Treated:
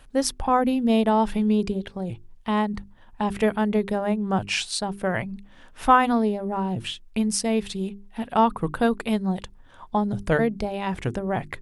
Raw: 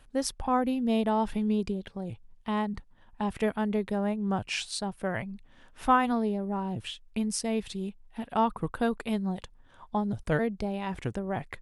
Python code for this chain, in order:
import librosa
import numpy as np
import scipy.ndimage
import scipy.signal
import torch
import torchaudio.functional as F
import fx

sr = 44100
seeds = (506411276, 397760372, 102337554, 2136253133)

y = fx.hum_notches(x, sr, base_hz=50, count=8)
y = y * librosa.db_to_amplitude(6.5)